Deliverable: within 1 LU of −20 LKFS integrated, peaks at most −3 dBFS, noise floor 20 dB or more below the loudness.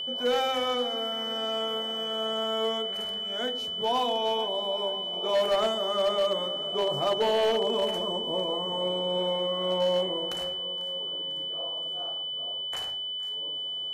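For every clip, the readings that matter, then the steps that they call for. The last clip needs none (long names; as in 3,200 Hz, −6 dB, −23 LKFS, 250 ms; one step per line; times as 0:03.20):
share of clipped samples 0.8%; peaks flattened at −19.5 dBFS; interfering tone 3,000 Hz; level of the tone −31 dBFS; integrated loudness −28.0 LKFS; sample peak −19.5 dBFS; target loudness −20.0 LKFS
→ clipped peaks rebuilt −19.5 dBFS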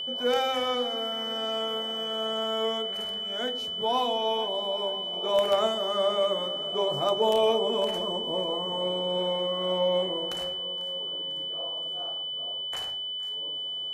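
share of clipped samples 0.0%; interfering tone 3,000 Hz; level of the tone −31 dBFS
→ notch filter 3,000 Hz, Q 30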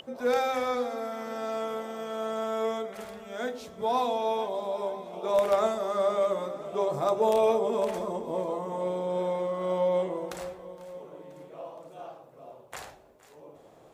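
interfering tone none found; integrated loudness −29.5 LKFS; sample peak −10.5 dBFS; target loudness −20.0 LKFS
→ level +9.5 dB
brickwall limiter −3 dBFS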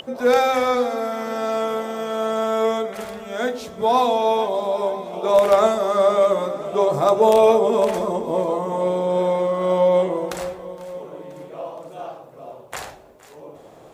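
integrated loudness −20.0 LKFS; sample peak −3.0 dBFS; background noise floor −45 dBFS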